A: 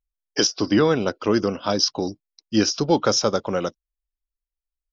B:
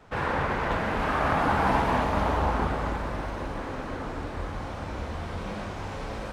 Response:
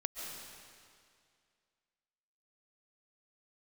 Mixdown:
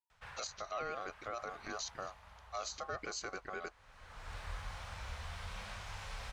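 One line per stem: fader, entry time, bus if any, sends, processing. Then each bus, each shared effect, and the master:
-15.5 dB, 0.00 s, no send, ring modulator 940 Hz
-1.5 dB, 0.10 s, no send, passive tone stack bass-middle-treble 10-0-10; auto duck -21 dB, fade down 0.55 s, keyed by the first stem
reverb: off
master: limiter -30 dBFS, peak gain reduction 7.5 dB

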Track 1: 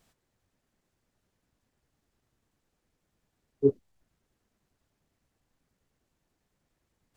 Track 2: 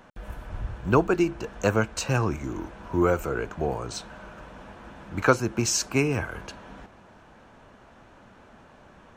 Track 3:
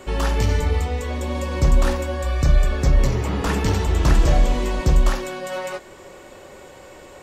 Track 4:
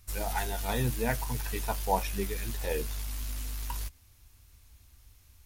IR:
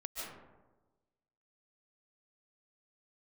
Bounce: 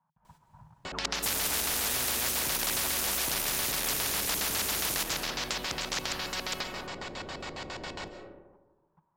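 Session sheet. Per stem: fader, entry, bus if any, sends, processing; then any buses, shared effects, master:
-11.5 dB, 0.25 s, send -7 dB, echo send -11 dB, dry
-13.5 dB, 0.00 s, send -10.5 dB, no echo send, level quantiser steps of 17 dB; double band-pass 380 Hz, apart 2.6 oct
-6.5 dB, 0.85 s, send -7 dB, no echo send, LFO low-pass square 7.3 Hz 350–4700 Hz
-1.5 dB, 1.15 s, send -4 dB, echo send -8 dB, dry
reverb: on, RT60 1.2 s, pre-delay 0.105 s
echo: echo 0.259 s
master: soft clip -11 dBFS, distortion -22 dB; spectral compressor 10:1

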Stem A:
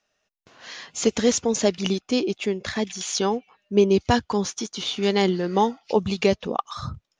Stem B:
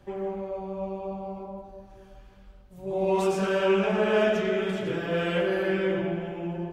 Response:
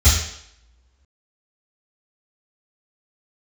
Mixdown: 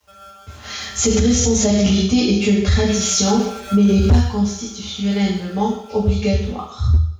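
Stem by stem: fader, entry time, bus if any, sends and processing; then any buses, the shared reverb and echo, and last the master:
-2.5 dB, 0.00 s, send -8.5 dB, dry
-14.5 dB, 0.00 s, send -19 dB, rotary speaker horn 0.75 Hz; polarity switched at an audio rate 980 Hz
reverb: on, RT60 0.75 s, pre-delay 3 ms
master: bit-crush 11-bit; overloaded stage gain -3 dB; limiter -7.5 dBFS, peak gain reduction 10.5 dB

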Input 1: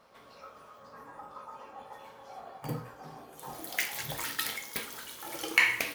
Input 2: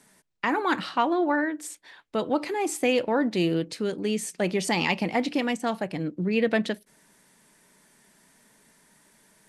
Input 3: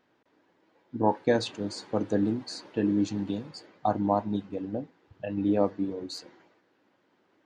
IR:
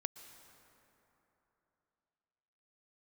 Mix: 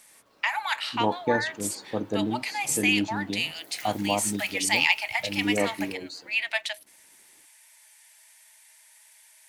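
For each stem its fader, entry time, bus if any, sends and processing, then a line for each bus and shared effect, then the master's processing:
-10.5 dB, 0.00 s, no send, dry
+1.5 dB, 0.00 s, no send, rippled Chebyshev high-pass 610 Hz, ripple 9 dB; tilt +4.5 dB/oct
-1.5 dB, 0.00 s, no send, bit-crush 11-bit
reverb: off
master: dry

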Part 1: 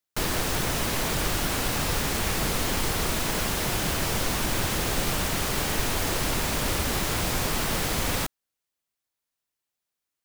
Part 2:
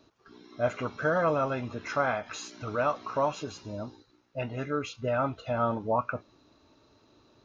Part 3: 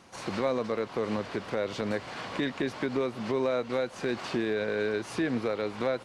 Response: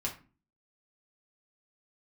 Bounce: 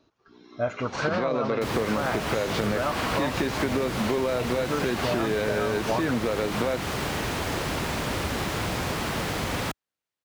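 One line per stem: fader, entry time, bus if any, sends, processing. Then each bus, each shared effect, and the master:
+1.0 dB, 1.45 s, no bus, no send, HPF 65 Hz; high shelf 4800 Hz -6.5 dB
-3.0 dB, 0.00 s, bus A, no send, dry
+2.5 dB, 0.80 s, bus A, no send, LPF 6400 Hz 24 dB/oct
bus A: 0.0 dB, AGC gain up to 8 dB; limiter -11 dBFS, peak gain reduction 6.5 dB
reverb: off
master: high shelf 6500 Hz -6 dB; compressor, threshold -22 dBFS, peak gain reduction 7.5 dB

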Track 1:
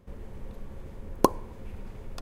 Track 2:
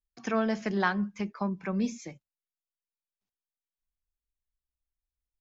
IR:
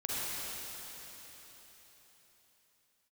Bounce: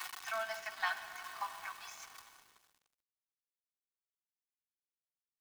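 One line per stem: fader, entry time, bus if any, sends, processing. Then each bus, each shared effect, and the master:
-3.5 dB, 0.00 s, send -15 dB, infinite clipping; comb 5.4 ms, depth 47%; auto duck -16 dB, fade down 1.05 s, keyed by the second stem
-6.5 dB, 0.00 s, send -11 dB, comb 5.9 ms, depth 68%; small resonant body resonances 270/630 Hz, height 13 dB, ringing for 65 ms; ending taper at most 280 dB/s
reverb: on, RT60 4.3 s, pre-delay 39 ms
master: steep high-pass 840 Hz 48 dB/oct; comb 2.7 ms, depth 52%; crossover distortion -53.5 dBFS

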